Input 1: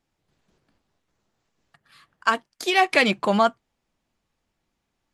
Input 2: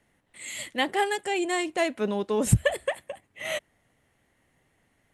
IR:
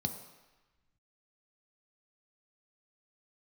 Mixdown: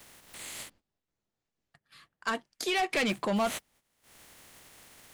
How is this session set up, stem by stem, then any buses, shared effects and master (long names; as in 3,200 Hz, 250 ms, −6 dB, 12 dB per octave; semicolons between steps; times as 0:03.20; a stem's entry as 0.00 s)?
−1.0 dB, 0.00 s, no send, parametric band 1,100 Hz −3.5 dB 1 octave
−7.0 dB, 0.00 s, muted 0:00.70–0:03.07, no send, compressing power law on the bin magnitudes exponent 0.28; upward compression, threshold −30 dBFS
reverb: not used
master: noise gate −59 dBFS, range −12 dB; soft clipping −19.5 dBFS, distortion −10 dB; brickwall limiter −23 dBFS, peak gain reduction 3.5 dB